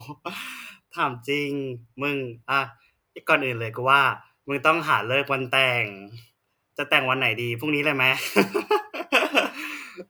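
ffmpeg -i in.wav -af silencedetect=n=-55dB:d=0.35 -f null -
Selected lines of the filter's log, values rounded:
silence_start: 6.30
silence_end: 6.76 | silence_duration: 0.47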